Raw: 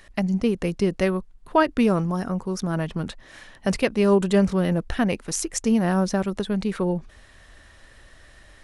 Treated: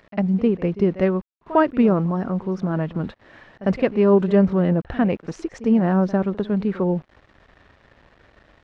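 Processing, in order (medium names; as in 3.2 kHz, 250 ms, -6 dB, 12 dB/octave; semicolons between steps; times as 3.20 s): high-pass 110 Hz 6 dB/octave; bit crusher 8-bit; tape spacing loss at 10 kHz 40 dB; pre-echo 52 ms -17 dB; trim +5 dB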